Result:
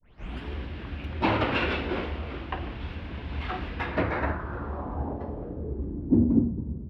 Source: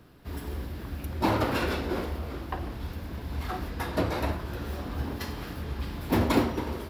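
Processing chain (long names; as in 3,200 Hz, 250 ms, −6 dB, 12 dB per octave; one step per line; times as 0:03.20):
turntable start at the beginning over 0.42 s
low-pass filter sweep 2,800 Hz → 180 Hz, 0:03.74–0:06.59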